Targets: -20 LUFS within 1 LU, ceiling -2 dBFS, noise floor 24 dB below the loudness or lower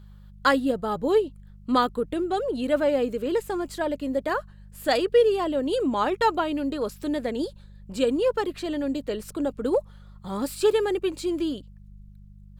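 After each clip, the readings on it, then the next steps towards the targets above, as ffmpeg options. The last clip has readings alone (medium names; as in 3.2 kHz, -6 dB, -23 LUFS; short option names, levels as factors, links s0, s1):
hum 50 Hz; highest harmonic 200 Hz; hum level -45 dBFS; loudness -25.5 LUFS; peak level -9.0 dBFS; loudness target -20.0 LUFS
-> -af "bandreject=f=50:t=h:w=4,bandreject=f=100:t=h:w=4,bandreject=f=150:t=h:w=4,bandreject=f=200:t=h:w=4"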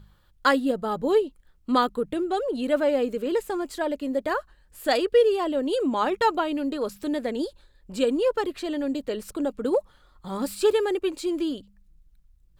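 hum not found; loudness -25.5 LUFS; peak level -9.0 dBFS; loudness target -20.0 LUFS
-> -af "volume=1.88"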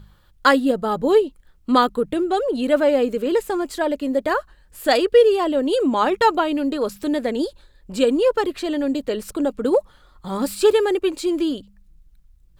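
loudness -20.0 LUFS; peak level -3.5 dBFS; noise floor -54 dBFS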